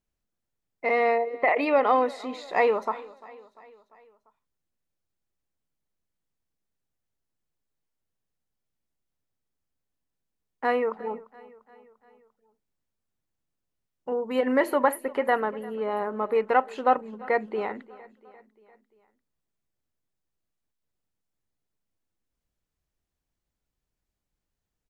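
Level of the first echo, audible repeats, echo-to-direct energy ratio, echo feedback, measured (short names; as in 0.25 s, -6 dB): -21.0 dB, 3, -19.5 dB, 57%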